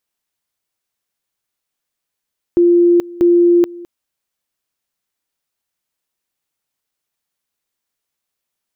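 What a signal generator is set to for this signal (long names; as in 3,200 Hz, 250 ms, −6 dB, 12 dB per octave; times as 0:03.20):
tone at two levels in turn 347 Hz −7 dBFS, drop 21.5 dB, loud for 0.43 s, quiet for 0.21 s, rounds 2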